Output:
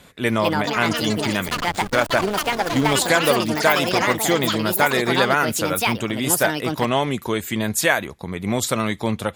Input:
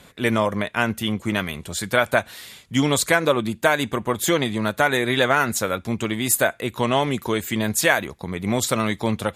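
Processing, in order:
delay with pitch and tempo change per echo 276 ms, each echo +6 semitones, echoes 3
0:01.48–0:02.94: slack as between gear wheels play −18 dBFS

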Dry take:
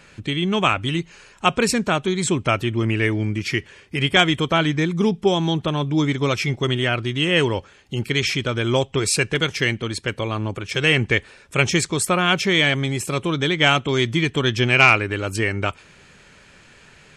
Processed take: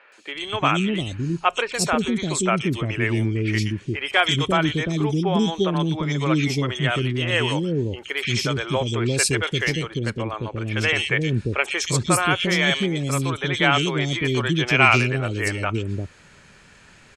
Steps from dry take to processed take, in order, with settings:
0:09.87–0:10.45: high-shelf EQ 3,200 Hz −11.5 dB
three-band delay without the direct sound mids, highs, lows 120/350 ms, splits 440/2,900 Hz

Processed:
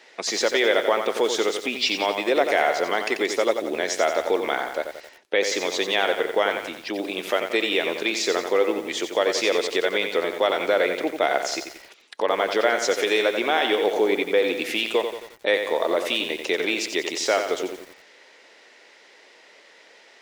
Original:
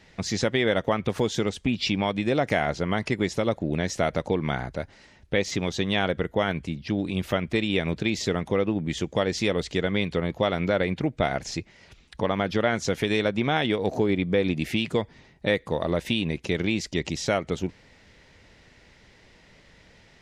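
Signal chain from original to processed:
high-pass filter 370 Hz 24 dB per octave
in parallel at −1 dB: brickwall limiter −17.5 dBFS, peak gain reduction 8.5 dB
on the sum: feedback echo at a low word length 89 ms, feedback 55%, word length 7 bits, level −7 dB

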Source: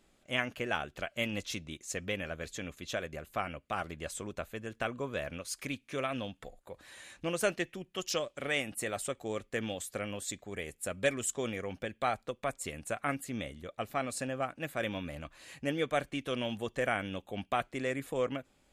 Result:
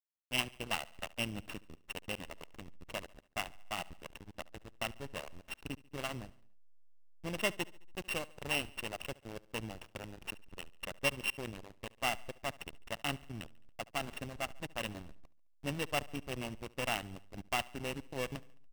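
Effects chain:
samples sorted by size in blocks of 16 samples
parametric band 2,900 Hz +6 dB 0.46 octaves
comb filter 1 ms, depth 38%
slack as between gear wheels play −26 dBFS
repeating echo 71 ms, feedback 56%, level −21.5 dB
level −3 dB

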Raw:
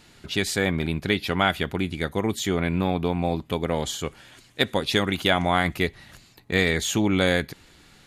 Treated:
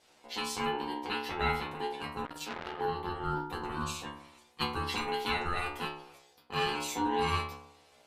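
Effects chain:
stiff-string resonator 63 Hz, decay 0.82 s, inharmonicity 0.002
ring modulation 620 Hz
0:02.25–0:02.81: saturating transformer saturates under 2,100 Hz
level +5 dB

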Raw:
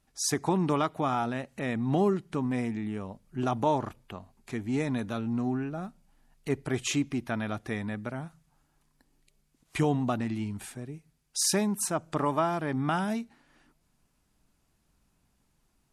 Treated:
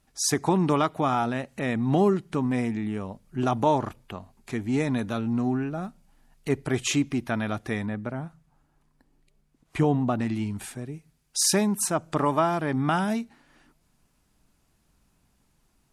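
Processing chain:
0:07.86–0:10.19: high-shelf EQ 2,300 Hz −10 dB
level +4 dB

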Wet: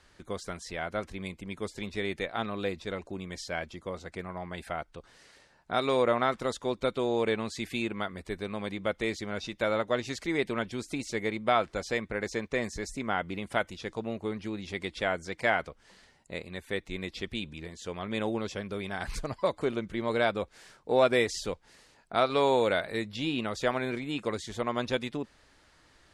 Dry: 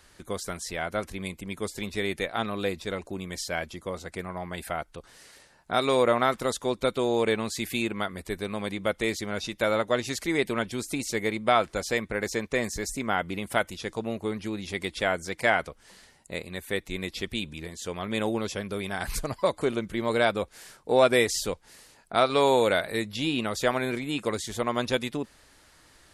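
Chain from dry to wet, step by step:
high-frequency loss of the air 65 metres
level −3 dB

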